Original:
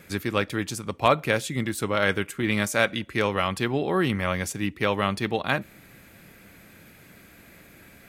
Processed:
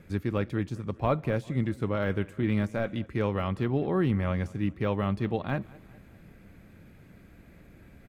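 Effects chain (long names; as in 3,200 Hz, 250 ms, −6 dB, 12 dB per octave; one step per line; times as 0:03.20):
de-essing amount 75%
spectral tilt −3 dB per octave
on a send: repeating echo 200 ms, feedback 52%, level −22.5 dB
on the sum: level −7 dB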